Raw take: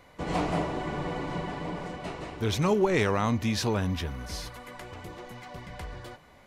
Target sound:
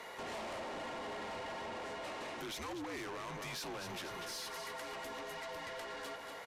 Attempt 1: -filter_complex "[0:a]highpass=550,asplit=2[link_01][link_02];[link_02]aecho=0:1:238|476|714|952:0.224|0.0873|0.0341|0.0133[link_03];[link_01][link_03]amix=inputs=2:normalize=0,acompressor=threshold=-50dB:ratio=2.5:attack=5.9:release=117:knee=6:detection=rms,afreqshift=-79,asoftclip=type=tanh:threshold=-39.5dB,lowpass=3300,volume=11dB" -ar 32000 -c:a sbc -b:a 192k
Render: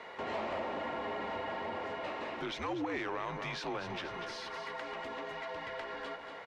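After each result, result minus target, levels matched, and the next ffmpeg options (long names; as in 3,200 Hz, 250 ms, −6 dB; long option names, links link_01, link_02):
soft clipping: distortion −11 dB; 4,000 Hz band −3.5 dB
-filter_complex "[0:a]highpass=550,asplit=2[link_01][link_02];[link_02]aecho=0:1:238|476|714|952:0.224|0.0873|0.0341|0.0133[link_03];[link_01][link_03]amix=inputs=2:normalize=0,acompressor=threshold=-50dB:ratio=2.5:attack=5.9:release=117:knee=6:detection=rms,afreqshift=-79,asoftclip=type=tanh:threshold=-51.5dB,lowpass=3300,volume=11dB" -ar 32000 -c:a sbc -b:a 192k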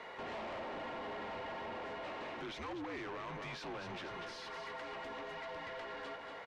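4,000 Hz band −3.0 dB
-filter_complex "[0:a]highpass=550,asplit=2[link_01][link_02];[link_02]aecho=0:1:238|476|714|952:0.224|0.0873|0.0341|0.0133[link_03];[link_01][link_03]amix=inputs=2:normalize=0,acompressor=threshold=-50dB:ratio=2.5:attack=5.9:release=117:knee=6:detection=rms,afreqshift=-79,asoftclip=type=tanh:threshold=-51.5dB,volume=11dB" -ar 32000 -c:a sbc -b:a 192k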